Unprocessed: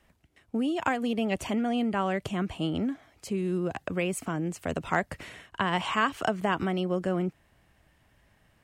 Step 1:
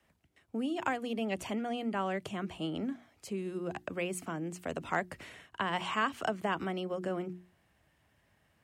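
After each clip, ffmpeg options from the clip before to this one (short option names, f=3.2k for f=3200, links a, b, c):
-filter_complex "[0:a]highpass=61,bandreject=f=60:t=h:w=6,bandreject=f=120:t=h:w=6,bandreject=f=180:t=h:w=6,bandreject=f=240:t=h:w=6,bandreject=f=300:t=h:w=6,bandreject=f=360:t=h:w=6,acrossover=split=170|1300|4900[a][b][c][d];[a]alimiter=level_in=18.5dB:limit=-24dB:level=0:latency=1,volume=-18.5dB[e];[e][b][c][d]amix=inputs=4:normalize=0,volume=-5dB"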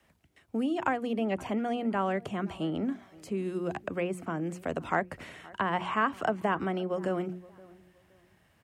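-filter_complex "[0:a]acrossover=split=2100[a][b];[a]aecho=1:1:521|1042:0.0794|0.0222[c];[b]acompressor=threshold=-55dB:ratio=5[d];[c][d]amix=inputs=2:normalize=0,volume=4.5dB"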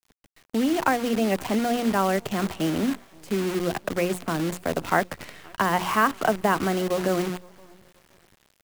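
-af "acrusher=bits=7:dc=4:mix=0:aa=0.000001,volume=6.5dB"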